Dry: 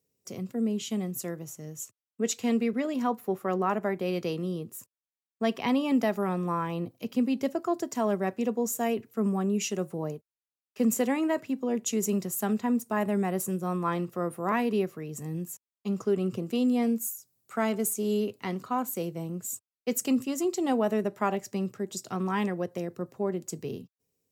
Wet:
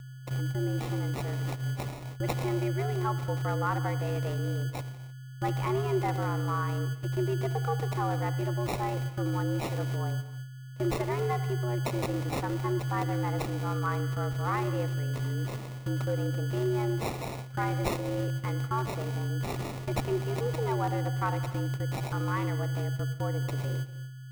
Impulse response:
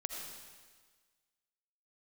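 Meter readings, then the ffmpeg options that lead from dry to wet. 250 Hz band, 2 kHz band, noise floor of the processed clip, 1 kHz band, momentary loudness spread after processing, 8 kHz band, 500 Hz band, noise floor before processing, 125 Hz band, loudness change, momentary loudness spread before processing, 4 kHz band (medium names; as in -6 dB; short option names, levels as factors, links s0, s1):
-7.0 dB, +1.0 dB, -44 dBFS, 0.0 dB, 5 LU, -10.5 dB, -3.5 dB, under -85 dBFS, +10.0 dB, -1.5 dB, 10 LU, -0.5 dB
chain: -filter_complex "[0:a]aeval=exprs='val(0)+0.0141*sin(2*PI*9200*n/s)':c=same,agate=range=0.112:threshold=0.0158:ratio=16:detection=peak,asplit=2[s0][s1];[1:a]atrim=start_sample=2205,afade=t=out:st=0.37:d=0.01,atrim=end_sample=16758[s2];[s1][s2]afir=irnorm=-1:irlink=0,volume=0.422[s3];[s0][s3]amix=inputs=2:normalize=0,deesser=0.85,bass=f=250:g=-12,treble=f=4000:g=13,afreqshift=120,equalizer=f=600:t=o:w=0.6:g=-11,acrossover=split=180|2400[s4][s5][s6];[s6]acrusher=samples=28:mix=1:aa=0.000001[s7];[s4][s5][s7]amix=inputs=3:normalize=0"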